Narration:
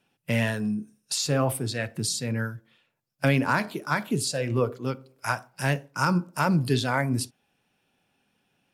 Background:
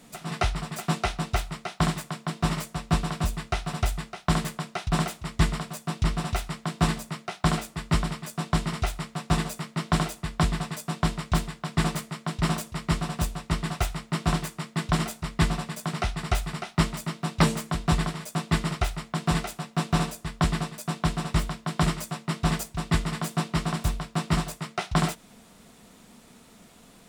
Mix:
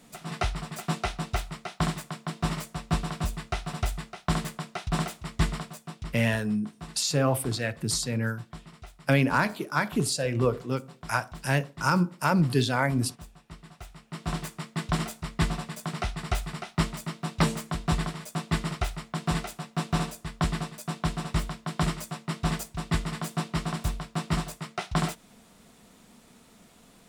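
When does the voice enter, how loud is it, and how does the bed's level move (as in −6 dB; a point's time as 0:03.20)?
5.85 s, 0.0 dB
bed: 0:05.61 −3 dB
0:06.29 −19 dB
0:13.78 −19 dB
0:14.46 −3 dB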